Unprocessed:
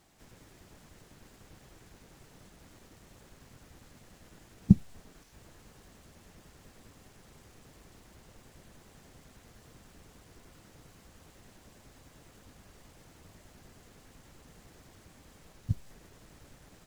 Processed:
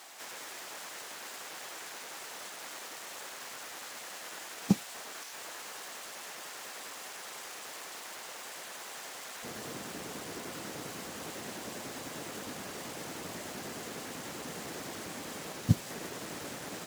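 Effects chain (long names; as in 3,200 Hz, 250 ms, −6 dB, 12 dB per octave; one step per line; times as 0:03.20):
high-pass filter 740 Hz 12 dB per octave, from 0:09.43 230 Hz
level +17.5 dB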